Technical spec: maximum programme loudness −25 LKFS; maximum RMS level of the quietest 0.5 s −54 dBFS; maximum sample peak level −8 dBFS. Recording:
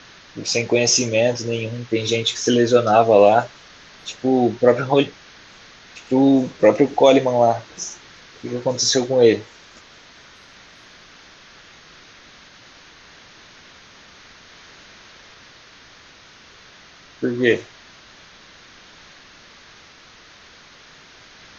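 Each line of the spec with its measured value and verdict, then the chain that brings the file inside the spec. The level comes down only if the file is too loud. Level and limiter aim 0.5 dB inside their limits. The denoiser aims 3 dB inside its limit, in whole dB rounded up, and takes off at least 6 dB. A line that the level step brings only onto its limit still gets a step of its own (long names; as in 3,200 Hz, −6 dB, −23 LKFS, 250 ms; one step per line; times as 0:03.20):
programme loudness −18.0 LKFS: out of spec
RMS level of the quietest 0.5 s −47 dBFS: out of spec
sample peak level −1.5 dBFS: out of spec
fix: level −7.5 dB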